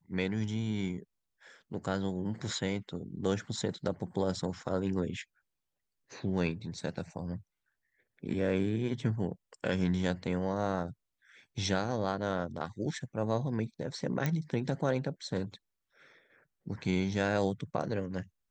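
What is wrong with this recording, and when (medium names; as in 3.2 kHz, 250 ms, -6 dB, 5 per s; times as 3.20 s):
14.26 s: pop -17 dBFS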